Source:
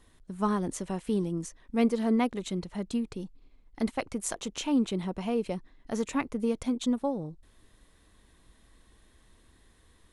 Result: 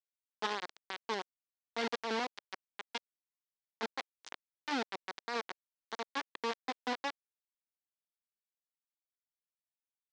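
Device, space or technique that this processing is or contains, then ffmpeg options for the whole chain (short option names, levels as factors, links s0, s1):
hand-held game console: -af "acrusher=bits=3:mix=0:aa=0.000001,highpass=450,equalizer=f=600:t=q:w=4:g=-8,equalizer=f=1300:t=q:w=4:g=-4,equalizer=f=2600:t=q:w=4:g=-4,lowpass=f=5100:w=0.5412,lowpass=f=5100:w=1.3066,volume=0.531"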